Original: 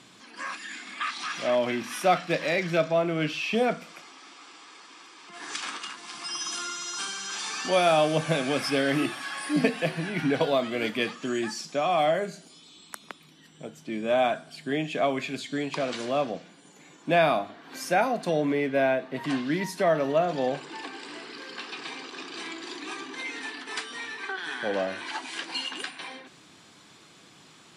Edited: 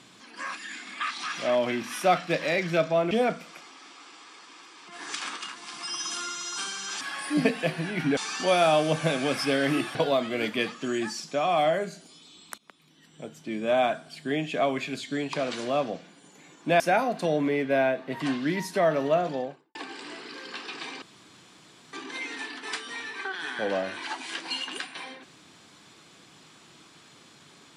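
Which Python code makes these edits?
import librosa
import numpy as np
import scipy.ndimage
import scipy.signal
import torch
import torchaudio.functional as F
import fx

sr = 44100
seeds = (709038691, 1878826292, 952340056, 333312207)

y = fx.studio_fade_out(x, sr, start_s=20.19, length_s=0.6)
y = fx.edit(y, sr, fx.cut(start_s=3.11, length_s=0.41),
    fx.move(start_s=9.2, length_s=1.16, to_s=7.42),
    fx.fade_in_from(start_s=12.99, length_s=0.66, floor_db=-17.5),
    fx.cut(start_s=17.21, length_s=0.63),
    fx.room_tone_fill(start_s=22.06, length_s=0.91), tone=tone)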